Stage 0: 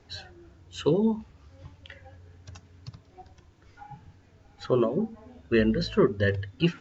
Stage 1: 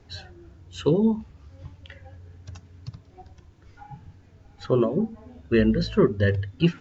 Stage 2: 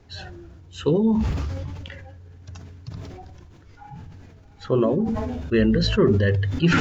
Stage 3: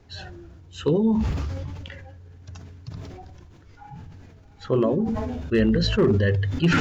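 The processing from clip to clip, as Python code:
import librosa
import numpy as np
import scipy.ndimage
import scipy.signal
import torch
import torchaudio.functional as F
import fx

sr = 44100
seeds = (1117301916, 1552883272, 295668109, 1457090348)

y1 = fx.low_shelf(x, sr, hz=280.0, db=6.0)
y2 = fx.sustainer(y1, sr, db_per_s=24.0)
y3 = np.clip(y2, -10.0 ** (-11.0 / 20.0), 10.0 ** (-11.0 / 20.0))
y3 = F.gain(torch.from_numpy(y3), -1.0).numpy()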